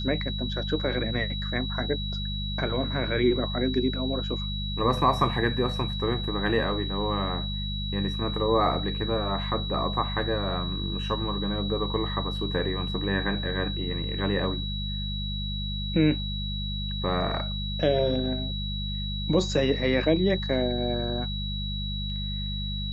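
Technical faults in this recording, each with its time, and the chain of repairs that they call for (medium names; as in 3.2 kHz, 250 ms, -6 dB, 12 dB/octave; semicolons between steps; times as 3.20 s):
hum 50 Hz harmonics 4 -32 dBFS
whine 3.9 kHz -34 dBFS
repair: band-stop 3.9 kHz, Q 30; de-hum 50 Hz, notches 4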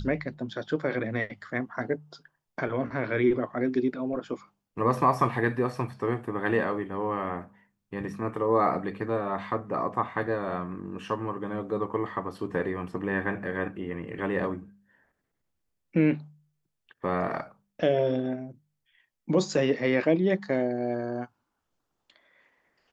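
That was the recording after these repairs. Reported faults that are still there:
nothing left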